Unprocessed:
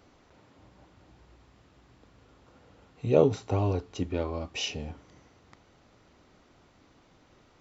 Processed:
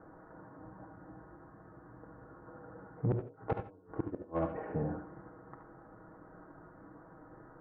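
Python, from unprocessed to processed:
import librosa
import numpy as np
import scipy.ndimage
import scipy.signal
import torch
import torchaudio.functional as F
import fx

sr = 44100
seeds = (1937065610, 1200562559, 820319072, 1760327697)

y = scipy.signal.sosfilt(scipy.signal.butter(12, 1700.0, 'lowpass', fs=sr, output='sos'), x)
y = fx.low_shelf(y, sr, hz=81.0, db=-7.0)
y = y + 0.56 * np.pad(y, (int(6.3 * sr / 1000.0), 0))[:len(y)]
y = fx.gate_flip(y, sr, shuts_db=-21.0, range_db=-36)
y = 10.0 ** (-29.0 / 20.0) * np.tanh(y / 10.0 ** (-29.0 / 20.0))
y = y + 10.0 ** (-8.5 / 20.0) * np.pad(y, (int(73 * sr / 1000.0), 0))[:len(y)]
y = fx.rev_gated(y, sr, seeds[0], gate_ms=110, shape='rising', drr_db=8.0)
y = F.gain(torch.from_numpy(y), 5.0).numpy()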